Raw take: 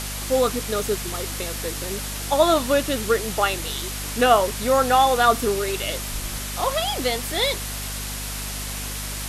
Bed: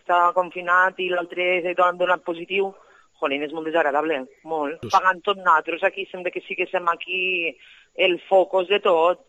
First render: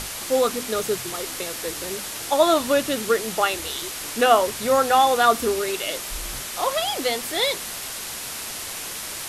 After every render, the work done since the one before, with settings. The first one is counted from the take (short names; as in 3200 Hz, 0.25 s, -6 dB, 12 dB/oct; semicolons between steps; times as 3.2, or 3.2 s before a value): notches 50/100/150/200/250 Hz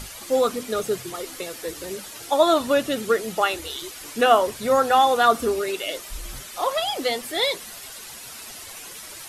denoiser 10 dB, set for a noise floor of -33 dBFS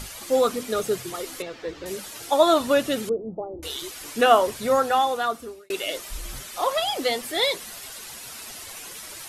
1.42–1.86 air absorption 190 m; 3.09–3.63 Gaussian blur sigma 15 samples; 4.57–5.7 fade out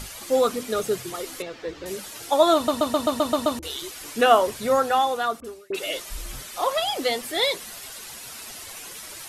2.55 stutter in place 0.13 s, 8 plays; 5.4–6.42 dispersion highs, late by 46 ms, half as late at 1900 Hz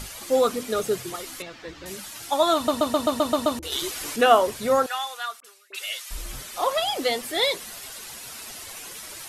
1.16–2.65 bell 450 Hz -10 dB; 3.72–4.16 gain +5.5 dB; 4.86–6.11 HPF 1500 Hz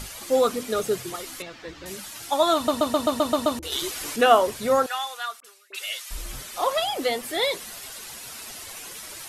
6.84–7.53 dynamic EQ 5000 Hz, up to -4 dB, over -35 dBFS, Q 0.78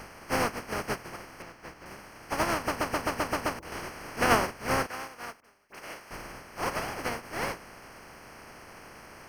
spectral contrast lowered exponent 0.19; running mean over 12 samples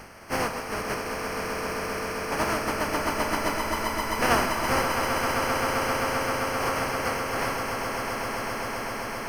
swelling echo 0.131 s, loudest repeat 8, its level -8 dB; Schroeder reverb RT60 2.2 s, combs from 28 ms, DRR 6 dB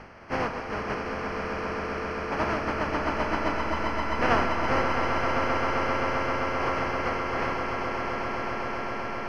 air absorption 210 m; swelling echo 92 ms, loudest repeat 5, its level -17 dB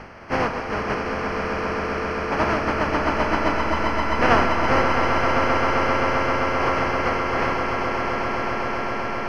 gain +6 dB